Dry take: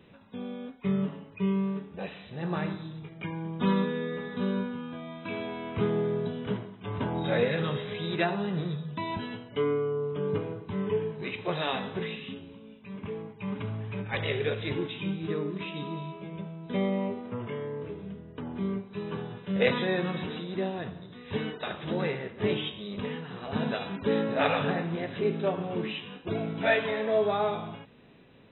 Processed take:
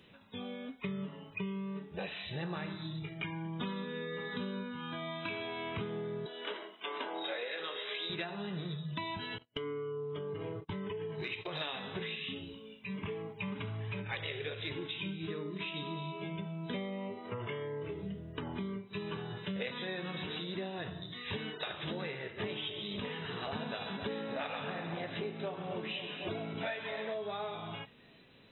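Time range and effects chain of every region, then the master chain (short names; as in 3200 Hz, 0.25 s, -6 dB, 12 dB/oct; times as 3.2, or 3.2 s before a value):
6.26–8.1 Bessel high-pass 420 Hz, order 6 + doubler 18 ms -13 dB
9.38–11.61 gate -42 dBFS, range -34 dB + compressor 16:1, threshold -32 dBFS
22.25–27.14 dynamic EQ 850 Hz, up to +4 dB, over -41 dBFS, Q 1.1 + split-band echo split 860 Hz, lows 0.257 s, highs 0.135 s, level -11 dB
whole clip: spectral noise reduction 9 dB; high shelf 2200 Hz +11 dB; compressor 10:1, threshold -39 dBFS; gain +3 dB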